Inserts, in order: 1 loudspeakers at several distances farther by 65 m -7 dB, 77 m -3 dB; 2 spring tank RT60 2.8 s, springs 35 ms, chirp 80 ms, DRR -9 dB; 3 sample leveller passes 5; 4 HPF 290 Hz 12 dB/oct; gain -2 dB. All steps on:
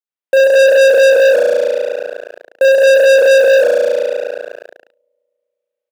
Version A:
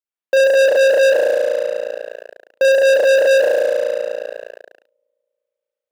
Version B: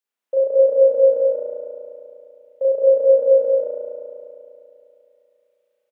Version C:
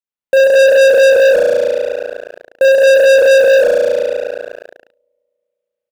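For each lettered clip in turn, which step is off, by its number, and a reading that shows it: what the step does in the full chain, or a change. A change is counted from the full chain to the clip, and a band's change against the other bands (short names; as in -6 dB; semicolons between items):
1, momentary loudness spread change +2 LU; 3, crest factor change +3.0 dB; 4, crest factor change -4.5 dB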